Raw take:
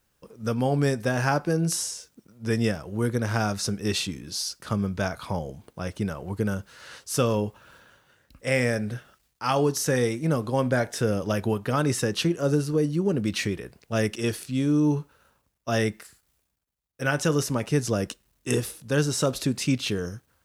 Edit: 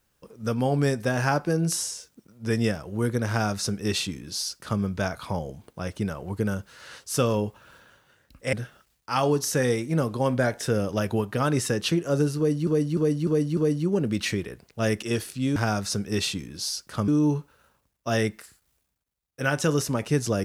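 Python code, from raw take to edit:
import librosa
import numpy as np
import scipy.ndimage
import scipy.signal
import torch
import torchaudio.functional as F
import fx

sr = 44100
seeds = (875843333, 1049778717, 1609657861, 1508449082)

y = fx.edit(x, sr, fx.duplicate(start_s=3.29, length_s=1.52, to_s=14.69),
    fx.cut(start_s=8.53, length_s=0.33),
    fx.repeat(start_s=12.7, length_s=0.3, count=5), tone=tone)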